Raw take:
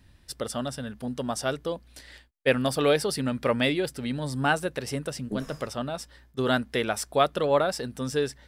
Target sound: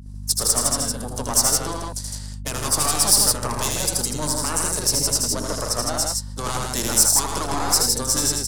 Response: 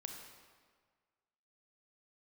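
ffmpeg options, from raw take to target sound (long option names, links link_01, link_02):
-filter_complex "[0:a]lowpass=7900,agate=range=-33dB:threshold=-48dB:ratio=3:detection=peak,highpass=44,afftfilt=real='re*lt(hypot(re,im),0.316)':imag='im*lt(hypot(re,im),0.316)':win_size=1024:overlap=0.75,equalizer=frequency=1000:width_type=o:width=1:gain=11,equalizer=frequency=2000:width_type=o:width=1:gain=-9,equalizer=frequency=4000:width_type=o:width=1:gain=4,acrossover=split=240[link_01][link_02];[link_02]alimiter=limit=-18.5dB:level=0:latency=1:release=111[link_03];[link_01][link_03]amix=inputs=2:normalize=0,acrossover=split=160|3000[link_04][link_05][link_06];[link_04]acompressor=threshold=-47dB:ratio=4[link_07];[link_07][link_05][link_06]amix=inputs=3:normalize=0,aeval=exprs='0.158*(cos(1*acos(clip(val(0)/0.158,-1,1)))-cos(1*PI/2))+0.0224*(cos(4*acos(clip(val(0)/0.158,-1,1)))-cos(4*PI/2))+0.00398*(cos(5*acos(clip(val(0)/0.158,-1,1)))-cos(5*PI/2))+0.00141*(cos(7*acos(clip(val(0)/0.158,-1,1)))-cos(7*PI/2))+0.00282*(cos(8*acos(clip(val(0)/0.158,-1,1)))-cos(8*PI/2))':channel_layout=same,aexciter=amount=6.5:drive=9.5:freq=5400,aeval=exprs='val(0)+0.0126*(sin(2*PI*50*n/s)+sin(2*PI*2*50*n/s)/2+sin(2*PI*3*50*n/s)/3+sin(2*PI*4*50*n/s)/4+sin(2*PI*5*50*n/s)/5)':channel_layout=same,asplit=3[link_08][link_09][link_10];[link_09]asetrate=35002,aresample=44100,atempo=1.25992,volume=-16dB[link_11];[link_10]asetrate=52444,aresample=44100,atempo=0.840896,volume=-16dB[link_12];[link_08][link_11][link_12]amix=inputs=3:normalize=0,asplit=2[link_13][link_14];[link_14]aecho=0:1:78.72|110.8|160.3:0.631|0.355|0.708[link_15];[link_13][link_15]amix=inputs=2:normalize=0"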